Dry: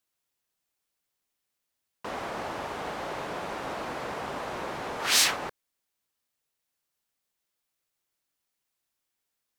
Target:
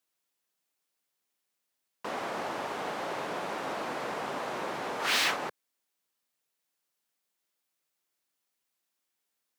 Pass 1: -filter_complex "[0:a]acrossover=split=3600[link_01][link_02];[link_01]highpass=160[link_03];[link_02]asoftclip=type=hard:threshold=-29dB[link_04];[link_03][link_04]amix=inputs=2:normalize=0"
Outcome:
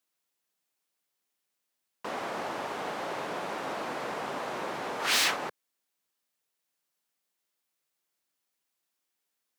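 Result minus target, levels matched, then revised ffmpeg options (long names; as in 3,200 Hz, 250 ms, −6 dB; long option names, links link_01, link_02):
hard clipping: distortion −4 dB
-filter_complex "[0:a]acrossover=split=3600[link_01][link_02];[link_01]highpass=160[link_03];[link_02]asoftclip=type=hard:threshold=-36dB[link_04];[link_03][link_04]amix=inputs=2:normalize=0"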